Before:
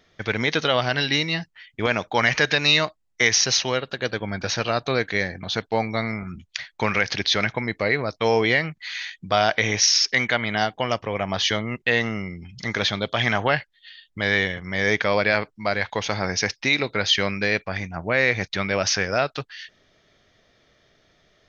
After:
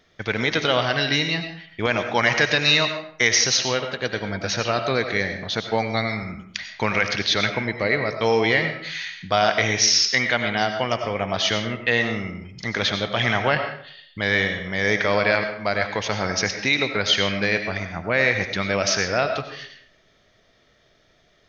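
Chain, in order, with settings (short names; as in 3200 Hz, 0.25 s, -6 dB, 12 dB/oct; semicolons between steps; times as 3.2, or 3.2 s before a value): 5.78–6.24 high shelf 4400 Hz +11.5 dB; reverb RT60 0.60 s, pre-delay 55 ms, DRR 6.5 dB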